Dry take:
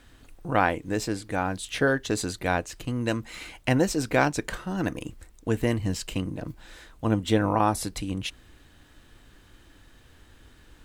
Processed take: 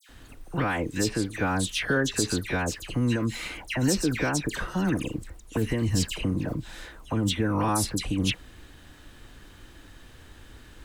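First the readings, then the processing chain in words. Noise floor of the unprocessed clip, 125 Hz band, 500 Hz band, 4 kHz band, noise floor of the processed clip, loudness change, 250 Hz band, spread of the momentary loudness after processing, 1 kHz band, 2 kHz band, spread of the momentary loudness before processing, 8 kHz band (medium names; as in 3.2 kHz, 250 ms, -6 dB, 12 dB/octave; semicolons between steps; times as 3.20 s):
-55 dBFS, +1.5 dB, -3.5 dB, +4.0 dB, -51 dBFS, 0.0 dB, +1.0 dB, 9 LU, -4.5 dB, -0.5 dB, 13 LU, +4.5 dB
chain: dynamic bell 670 Hz, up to -7 dB, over -40 dBFS, Q 1.5; peak limiter -20 dBFS, peak gain reduction 10.5 dB; phase dispersion lows, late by 92 ms, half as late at 2.1 kHz; trim +5 dB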